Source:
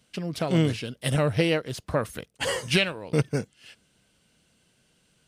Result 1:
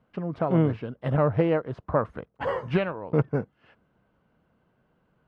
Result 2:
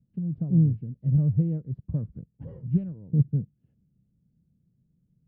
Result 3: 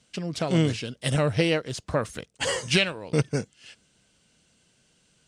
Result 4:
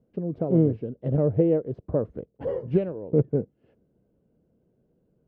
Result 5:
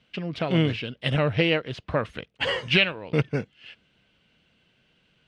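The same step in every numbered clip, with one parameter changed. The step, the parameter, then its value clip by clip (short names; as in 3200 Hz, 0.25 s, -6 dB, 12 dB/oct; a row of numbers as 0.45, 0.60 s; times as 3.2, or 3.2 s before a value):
synth low-pass, frequency: 1100, 160, 7500, 450, 2900 Hz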